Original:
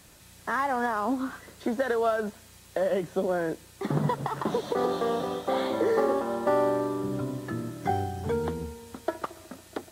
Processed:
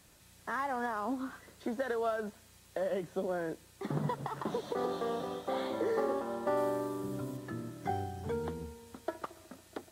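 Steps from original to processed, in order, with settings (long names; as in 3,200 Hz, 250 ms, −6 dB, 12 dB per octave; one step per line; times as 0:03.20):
0:06.57–0:07.37: high-shelf EQ 7,500 Hz +8 dB
level −7.5 dB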